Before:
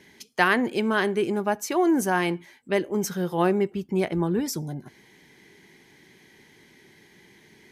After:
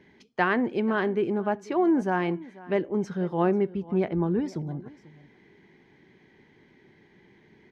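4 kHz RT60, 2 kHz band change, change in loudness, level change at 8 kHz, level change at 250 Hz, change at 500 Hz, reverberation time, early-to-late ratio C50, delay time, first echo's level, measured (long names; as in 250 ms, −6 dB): no reverb audible, −5.0 dB, −2.0 dB, below −20 dB, −1.0 dB, −1.5 dB, no reverb audible, no reverb audible, 490 ms, −20.0 dB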